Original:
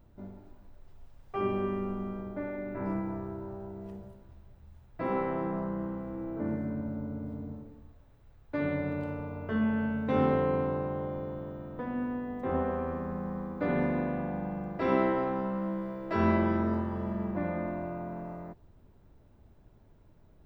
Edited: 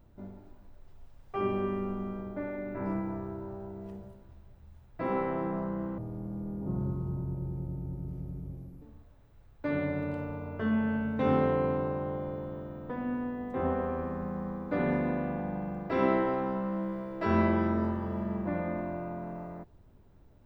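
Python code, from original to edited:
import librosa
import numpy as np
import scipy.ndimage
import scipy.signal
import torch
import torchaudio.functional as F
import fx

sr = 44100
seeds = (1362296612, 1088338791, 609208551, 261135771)

y = fx.edit(x, sr, fx.speed_span(start_s=5.98, length_s=1.73, speed=0.61), tone=tone)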